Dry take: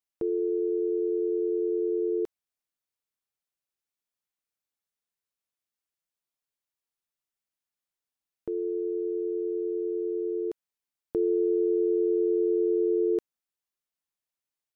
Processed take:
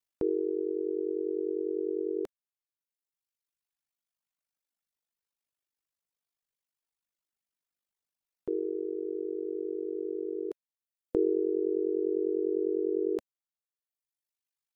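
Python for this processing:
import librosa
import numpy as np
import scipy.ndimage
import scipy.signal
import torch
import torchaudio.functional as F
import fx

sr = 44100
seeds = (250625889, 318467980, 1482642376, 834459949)

y = fx.dynamic_eq(x, sr, hz=130.0, q=1.3, threshold_db=-45.0, ratio=4.0, max_db=-5)
y = y * np.sin(2.0 * np.pi * 25.0 * np.arange(len(y)) / sr)
y = fx.dereverb_blind(y, sr, rt60_s=1.7)
y = y * 10.0 ** (3.5 / 20.0)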